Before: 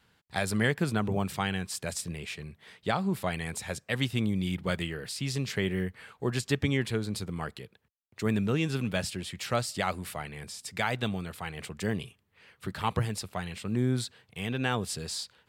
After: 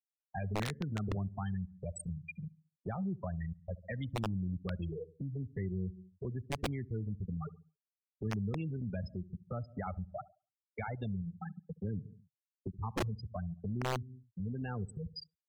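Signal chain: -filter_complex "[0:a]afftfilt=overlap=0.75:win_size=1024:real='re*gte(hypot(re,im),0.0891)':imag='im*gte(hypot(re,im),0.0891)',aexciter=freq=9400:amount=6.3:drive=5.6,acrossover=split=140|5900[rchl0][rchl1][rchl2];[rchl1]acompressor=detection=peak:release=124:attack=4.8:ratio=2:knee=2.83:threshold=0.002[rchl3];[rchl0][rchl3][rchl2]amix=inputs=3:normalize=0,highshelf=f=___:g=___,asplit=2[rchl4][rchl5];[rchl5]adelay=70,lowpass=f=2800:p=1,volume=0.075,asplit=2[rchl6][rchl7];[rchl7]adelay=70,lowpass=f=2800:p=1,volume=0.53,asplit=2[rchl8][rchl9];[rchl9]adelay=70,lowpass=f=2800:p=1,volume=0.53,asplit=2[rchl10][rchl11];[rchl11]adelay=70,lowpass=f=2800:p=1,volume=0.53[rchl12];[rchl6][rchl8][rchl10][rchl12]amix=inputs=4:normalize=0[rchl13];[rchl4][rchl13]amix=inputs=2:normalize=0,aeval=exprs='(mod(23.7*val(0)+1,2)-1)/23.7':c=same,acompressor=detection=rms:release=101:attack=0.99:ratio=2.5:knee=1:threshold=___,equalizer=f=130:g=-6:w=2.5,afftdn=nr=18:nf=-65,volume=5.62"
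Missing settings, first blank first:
3000, -9, 0.00251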